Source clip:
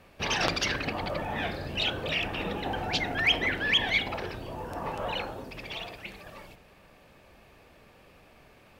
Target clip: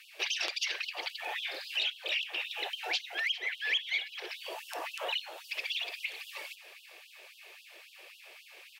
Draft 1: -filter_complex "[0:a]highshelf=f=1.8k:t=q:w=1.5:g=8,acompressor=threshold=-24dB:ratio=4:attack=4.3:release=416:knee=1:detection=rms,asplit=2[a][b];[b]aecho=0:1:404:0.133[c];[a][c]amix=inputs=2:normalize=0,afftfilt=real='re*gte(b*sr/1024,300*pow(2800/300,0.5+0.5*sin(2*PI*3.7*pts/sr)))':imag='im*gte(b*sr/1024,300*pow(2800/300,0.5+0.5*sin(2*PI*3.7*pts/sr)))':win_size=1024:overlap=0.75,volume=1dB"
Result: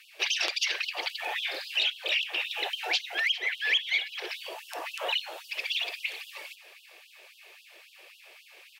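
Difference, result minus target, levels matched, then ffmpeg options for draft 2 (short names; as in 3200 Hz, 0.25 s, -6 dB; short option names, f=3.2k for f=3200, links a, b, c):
compressor: peak gain reduction -5 dB
-filter_complex "[0:a]highshelf=f=1.8k:t=q:w=1.5:g=8,acompressor=threshold=-30.5dB:ratio=4:attack=4.3:release=416:knee=1:detection=rms,asplit=2[a][b];[b]aecho=0:1:404:0.133[c];[a][c]amix=inputs=2:normalize=0,afftfilt=real='re*gte(b*sr/1024,300*pow(2800/300,0.5+0.5*sin(2*PI*3.7*pts/sr)))':imag='im*gte(b*sr/1024,300*pow(2800/300,0.5+0.5*sin(2*PI*3.7*pts/sr)))':win_size=1024:overlap=0.75,volume=1dB"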